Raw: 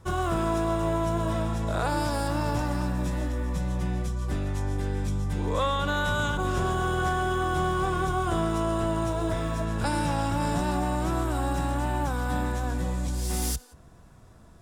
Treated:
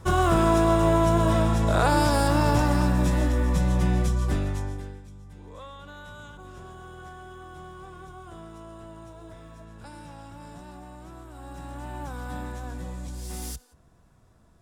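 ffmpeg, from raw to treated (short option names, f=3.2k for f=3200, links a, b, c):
-af "volume=16dB,afade=t=out:st=4.14:d=0.63:silence=0.251189,afade=t=out:st=4.77:d=0.25:silence=0.281838,afade=t=in:st=11.31:d=0.87:silence=0.316228"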